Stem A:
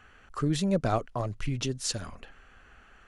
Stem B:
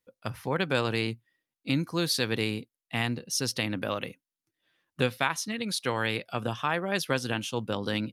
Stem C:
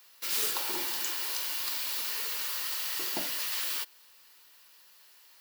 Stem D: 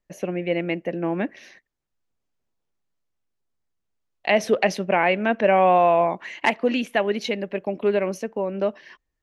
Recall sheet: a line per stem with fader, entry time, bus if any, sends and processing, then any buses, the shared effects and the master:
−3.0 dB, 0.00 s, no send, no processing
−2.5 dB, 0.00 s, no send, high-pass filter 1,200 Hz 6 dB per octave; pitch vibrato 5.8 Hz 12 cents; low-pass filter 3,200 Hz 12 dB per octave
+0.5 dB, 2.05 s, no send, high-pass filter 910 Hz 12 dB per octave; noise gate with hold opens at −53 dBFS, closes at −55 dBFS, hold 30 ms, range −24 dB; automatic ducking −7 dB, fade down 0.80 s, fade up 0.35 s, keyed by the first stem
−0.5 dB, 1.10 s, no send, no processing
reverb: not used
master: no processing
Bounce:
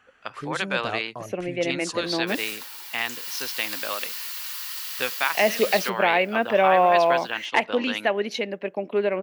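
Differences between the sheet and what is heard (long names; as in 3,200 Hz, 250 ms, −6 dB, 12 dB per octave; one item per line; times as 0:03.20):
stem B −2.5 dB → +6.5 dB
master: extra high-pass filter 280 Hz 6 dB per octave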